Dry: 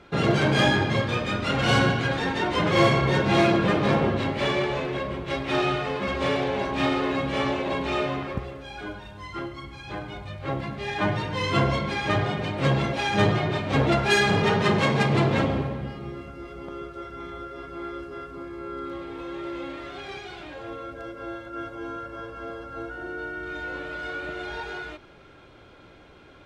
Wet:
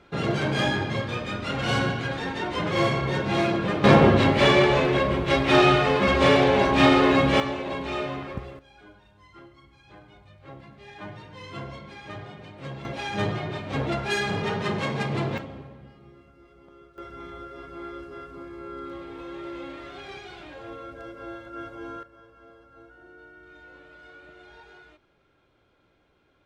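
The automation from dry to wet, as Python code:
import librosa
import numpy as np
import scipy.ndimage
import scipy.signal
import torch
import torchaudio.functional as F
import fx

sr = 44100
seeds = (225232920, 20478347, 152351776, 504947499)

y = fx.gain(x, sr, db=fx.steps((0.0, -4.0), (3.84, 7.0), (7.4, -3.5), (8.59, -15.0), (12.85, -6.0), (15.38, -15.0), (16.98, -3.0), (22.03, -15.5)))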